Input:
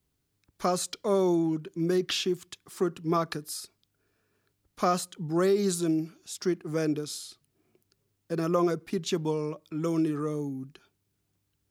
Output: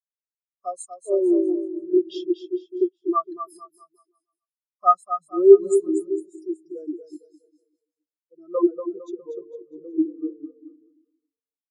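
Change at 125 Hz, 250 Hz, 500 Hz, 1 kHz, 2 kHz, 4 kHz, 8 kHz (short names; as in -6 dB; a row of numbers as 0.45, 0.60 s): under -25 dB, +3.5 dB, +8.0 dB, +7.0 dB, under -25 dB, under -10 dB, n/a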